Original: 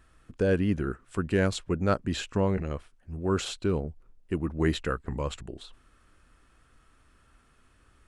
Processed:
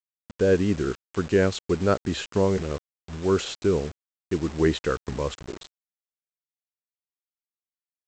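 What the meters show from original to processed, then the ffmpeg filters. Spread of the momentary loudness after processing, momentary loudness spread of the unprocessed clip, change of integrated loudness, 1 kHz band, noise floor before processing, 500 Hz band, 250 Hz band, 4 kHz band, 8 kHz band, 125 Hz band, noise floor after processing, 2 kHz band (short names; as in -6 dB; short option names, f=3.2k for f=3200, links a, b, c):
13 LU, 12 LU, +4.0 dB, +2.5 dB, -63 dBFS, +6.0 dB, +3.0 dB, +3.0 dB, +3.0 dB, +1.0 dB, under -85 dBFS, +2.5 dB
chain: -af "highpass=f=59:p=1,adynamicequalizer=threshold=0.00794:dfrequency=420:dqfactor=2.3:tfrequency=420:tqfactor=2.3:attack=5:release=100:ratio=0.375:range=3:mode=boostabove:tftype=bell,aresample=16000,acrusher=bits=6:mix=0:aa=0.000001,aresample=44100,volume=2dB"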